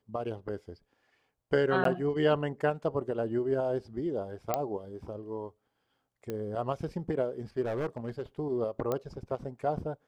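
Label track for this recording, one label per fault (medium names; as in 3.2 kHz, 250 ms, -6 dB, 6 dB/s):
1.840000	1.850000	dropout 13 ms
4.540000	4.540000	pop -14 dBFS
6.300000	6.300000	pop -22 dBFS
7.610000	8.210000	clipped -28 dBFS
8.920000	8.920000	pop -18 dBFS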